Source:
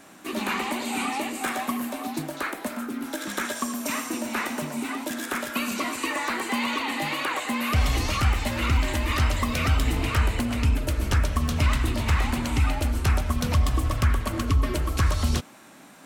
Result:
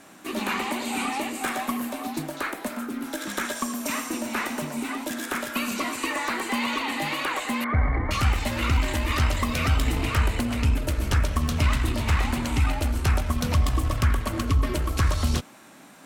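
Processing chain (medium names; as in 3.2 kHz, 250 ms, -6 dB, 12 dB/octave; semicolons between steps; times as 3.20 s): 7.64–8.11 s: brick-wall FIR low-pass 2.3 kHz; Chebyshev shaper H 4 -25 dB, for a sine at -11.5 dBFS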